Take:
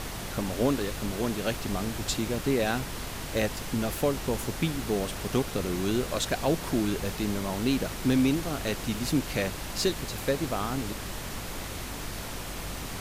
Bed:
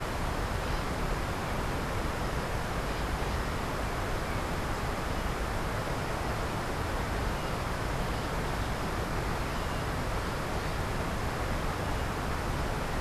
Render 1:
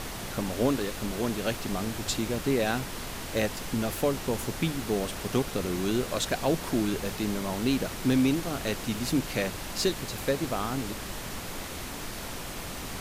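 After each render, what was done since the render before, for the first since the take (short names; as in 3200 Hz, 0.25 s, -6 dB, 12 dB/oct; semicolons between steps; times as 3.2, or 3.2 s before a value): notches 50/100/150 Hz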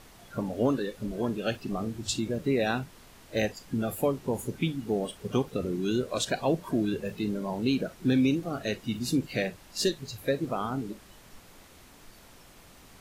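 noise print and reduce 16 dB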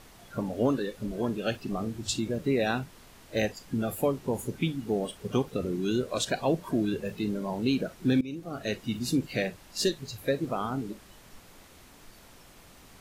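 8.21–8.72 fade in, from -21 dB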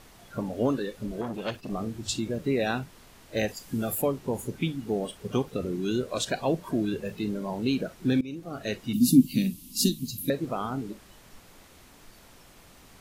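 1.21–1.7 core saturation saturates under 1200 Hz; 3.48–4.02 high shelf 6700 Hz +10.5 dB; 8.93–10.3 EQ curve 110 Hz 0 dB, 250 Hz +15 dB, 440 Hz -13 dB, 730 Hz -25 dB, 1000 Hz -11 dB, 1600 Hz -21 dB, 2900 Hz 0 dB, 7700 Hz +5 dB, 11000 Hz +14 dB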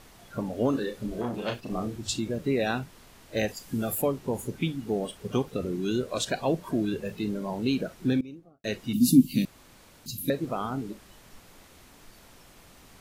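0.7–1.96 doubler 33 ms -5.5 dB; 8.01–8.64 studio fade out; 9.45–10.06 room tone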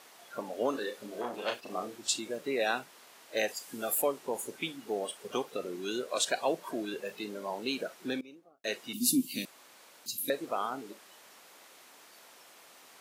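HPF 490 Hz 12 dB/oct; dynamic EQ 8800 Hz, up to +4 dB, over -54 dBFS, Q 1.9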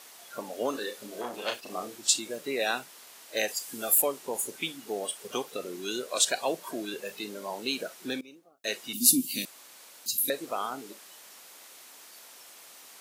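high shelf 3600 Hz +9.5 dB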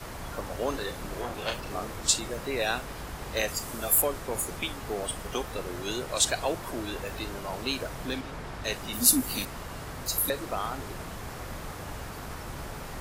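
add bed -7 dB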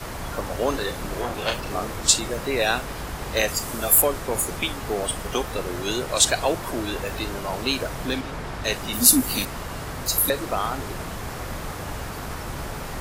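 gain +6.5 dB; limiter -1 dBFS, peak gain reduction 1.5 dB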